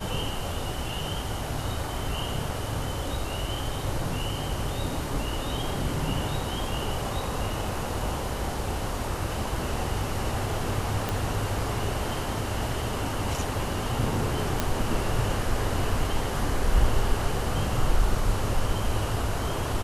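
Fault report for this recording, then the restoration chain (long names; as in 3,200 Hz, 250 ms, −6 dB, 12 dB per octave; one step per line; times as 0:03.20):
0:11.09: click
0:14.60: click −9 dBFS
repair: click removal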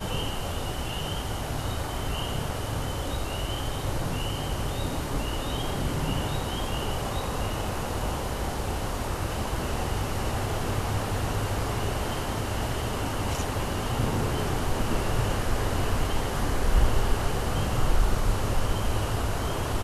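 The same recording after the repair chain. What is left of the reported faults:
none of them is left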